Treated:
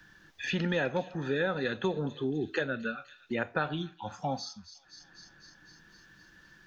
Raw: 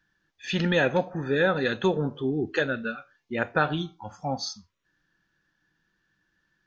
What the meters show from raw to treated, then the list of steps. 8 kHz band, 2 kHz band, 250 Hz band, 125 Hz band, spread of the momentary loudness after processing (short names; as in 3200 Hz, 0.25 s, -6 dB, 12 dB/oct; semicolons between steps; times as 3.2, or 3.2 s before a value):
n/a, -6.0 dB, -5.0 dB, -5.5 dB, 21 LU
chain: thin delay 0.253 s, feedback 52%, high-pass 3700 Hz, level -13.5 dB; three-band squash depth 70%; gain -6 dB